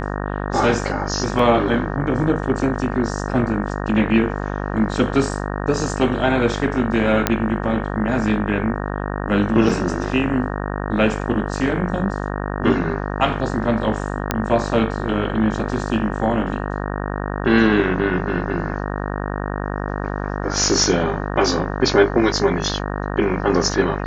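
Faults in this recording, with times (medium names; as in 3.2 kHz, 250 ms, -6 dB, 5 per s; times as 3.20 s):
buzz 50 Hz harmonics 37 -25 dBFS
1.39 s: dropout 3.1 ms
7.27 s: pop -1 dBFS
9.69 s: dropout 4.2 ms
14.31 s: pop -3 dBFS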